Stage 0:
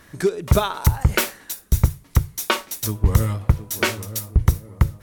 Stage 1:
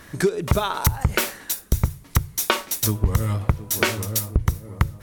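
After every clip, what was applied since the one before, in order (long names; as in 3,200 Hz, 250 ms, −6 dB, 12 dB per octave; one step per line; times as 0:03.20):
downward compressor 6 to 1, threshold −20 dBFS, peak gain reduction 11 dB
level +4.5 dB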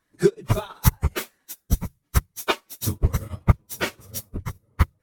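random phases in long frames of 50 ms
expander for the loud parts 2.5 to 1, over −34 dBFS
level +3.5 dB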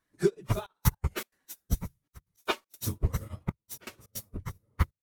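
gate pattern "xxxxxxx..x.xx.x" 159 BPM −24 dB
level −7 dB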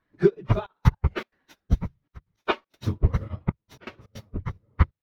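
high-frequency loss of the air 290 metres
level +7 dB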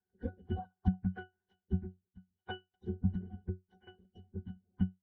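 spectral magnitudes quantised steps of 30 dB
ring modulation 120 Hz
resonances in every octave F#, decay 0.17 s
level +1 dB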